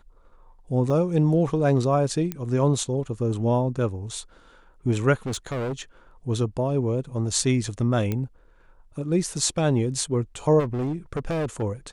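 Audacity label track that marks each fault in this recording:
0.900000	0.900000	dropout 2.1 ms
2.320000	2.320000	pop -14 dBFS
5.260000	5.820000	clipped -25 dBFS
8.120000	8.120000	pop -14 dBFS
10.590000	11.630000	clipped -23 dBFS

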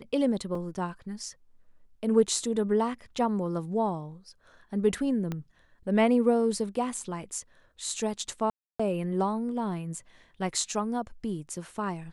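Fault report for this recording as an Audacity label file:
0.550000	0.550000	dropout 3.4 ms
5.320000	5.320000	pop -20 dBFS
8.500000	8.790000	dropout 295 ms

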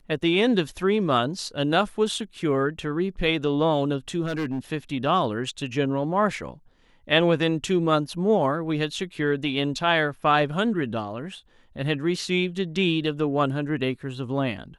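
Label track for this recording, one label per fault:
4.250000	4.590000	clipped -23.5 dBFS

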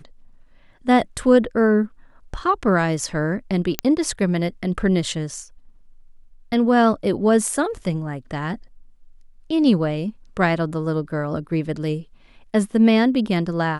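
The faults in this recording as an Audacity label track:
3.790000	3.790000	pop -2 dBFS

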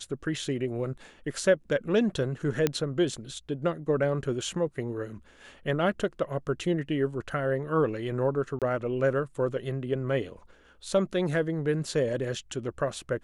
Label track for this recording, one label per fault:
2.670000	2.670000	pop -10 dBFS
8.590000	8.620000	dropout 27 ms

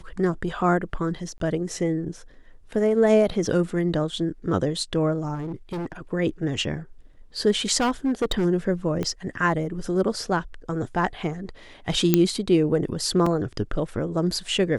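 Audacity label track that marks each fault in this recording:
1.380000	1.400000	dropout 22 ms
5.340000	6.010000	clipped -27 dBFS
7.770000	8.460000	clipped -18.5 dBFS
9.030000	9.030000	pop -15 dBFS
12.140000	12.140000	pop -3 dBFS
13.260000	13.260000	dropout 4 ms

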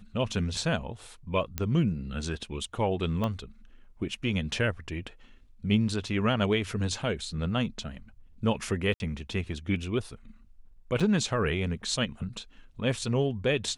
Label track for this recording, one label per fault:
1.580000	1.580000	pop -13 dBFS
3.240000	3.240000	pop -18 dBFS
8.940000	9.000000	dropout 61 ms
11.000000	11.010000	dropout 5.7 ms

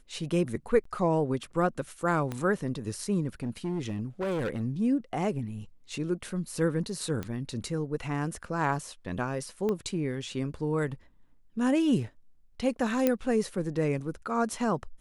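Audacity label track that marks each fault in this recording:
0.840000	0.850000	dropout 14 ms
2.320000	2.320000	pop -20 dBFS
3.420000	4.620000	clipped -27 dBFS
7.230000	7.230000	pop -21 dBFS
9.690000	9.690000	pop -19 dBFS
13.070000	13.070000	pop -11 dBFS

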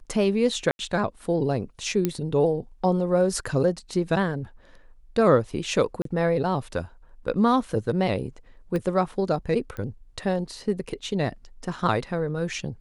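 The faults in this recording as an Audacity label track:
0.710000	0.790000	dropout 81 ms
2.050000	2.050000	pop -10 dBFS
6.020000	6.050000	dropout 33 ms
8.760000	8.760000	pop -18 dBFS
9.770000	9.770000	pop -22 dBFS

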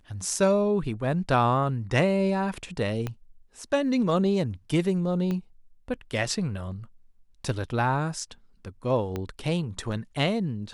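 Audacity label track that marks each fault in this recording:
3.070000	3.070000	pop -17 dBFS
5.310000	5.310000	pop -19 dBFS
9.160000	9.160000	pop -18 dBFS

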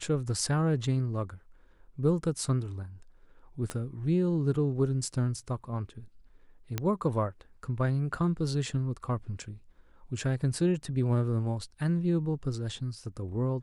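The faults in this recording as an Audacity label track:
3.700000	3.700000	pop -20 dBFS
6.780000	6.780000	pop -15 dBFS

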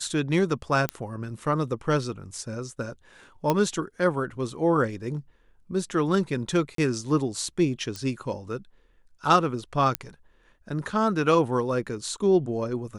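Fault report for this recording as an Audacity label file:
0.890000	0.890000	pop -11 dBFS
3.500000	3.500000	pop -9 dBFS
6.750000	6.780000	dropout 33 ms
7.960000	7.960000	pop -19 dBFS
9.950000	9.950000	pop -8 dBFS

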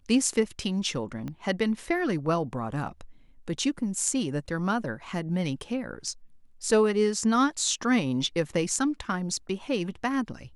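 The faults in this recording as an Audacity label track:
1.280000	1.280000	pop -24 dBFS

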